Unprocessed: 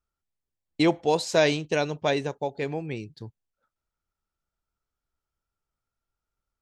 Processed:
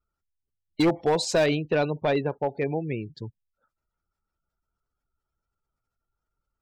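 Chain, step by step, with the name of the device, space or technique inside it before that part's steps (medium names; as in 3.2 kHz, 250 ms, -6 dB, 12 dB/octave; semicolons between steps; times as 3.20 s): spectral gate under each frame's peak -25 dB strong; limiter into clipper (peak limiter -14.5 dBFS, peak gain reduction 4 dB; hard clipper -20 dBFS, distortion -15 dB); 1.46–3.08 s: distance through air 200 m; trim +3.5 dB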